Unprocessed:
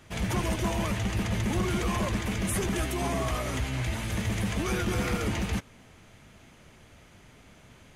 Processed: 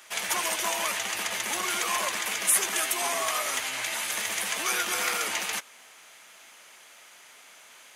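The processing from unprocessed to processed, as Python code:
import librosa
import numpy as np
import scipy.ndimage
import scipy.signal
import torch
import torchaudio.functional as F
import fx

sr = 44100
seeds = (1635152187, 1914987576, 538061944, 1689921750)

y = scipy.signal.sosfilt(scipy.signal.butter(2, 840.0, 'highpass', fs=sr, output='sos'), x)
y = fx.high_shelf(y, sr, hz=5800.0, db=9.0)
y = F.gain(torch.from_numpy(y), 5.5).numpy()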